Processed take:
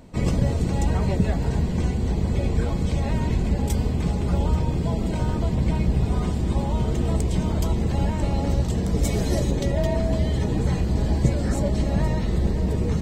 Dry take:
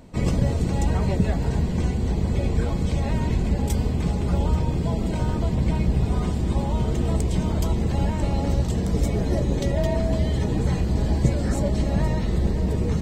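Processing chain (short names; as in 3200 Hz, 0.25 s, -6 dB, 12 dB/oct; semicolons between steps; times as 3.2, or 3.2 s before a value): 9.04–9.5 high shelf 2800 Hz -> 3800 Hz +11.5 dB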